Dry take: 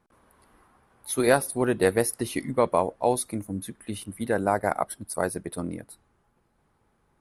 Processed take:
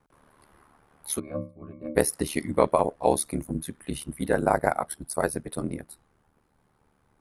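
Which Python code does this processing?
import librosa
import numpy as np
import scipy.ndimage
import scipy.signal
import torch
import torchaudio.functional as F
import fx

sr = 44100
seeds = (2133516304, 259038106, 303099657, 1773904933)

y = fx.octave_resonator(x, sr, note='C#', decay_s=0.33, at=(1.18, 1.95), fade=0.02)
y = y * np.sin(2.0 * np.pi * 37.0 * np.arange(len(y)) / sr)
y = y * 10.0 ** (4.0 / 20.0)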